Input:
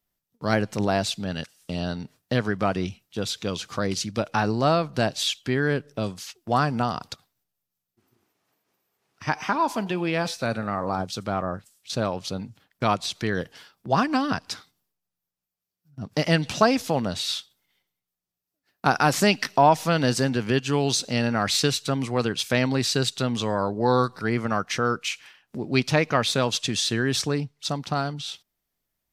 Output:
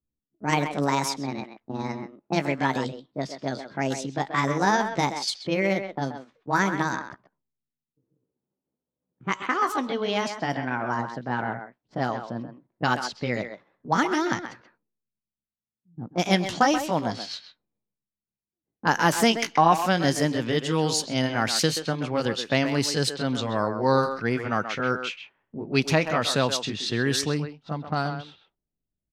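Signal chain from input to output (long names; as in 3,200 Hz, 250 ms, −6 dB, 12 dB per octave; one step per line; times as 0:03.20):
pitch glide at a constant tempo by +6 semitones ending unshifted
low-pass that shuts in the quiet parts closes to 300 Hz, open at −21 dBFS
far-end echo of a speakerphone 130 ms, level −8 dB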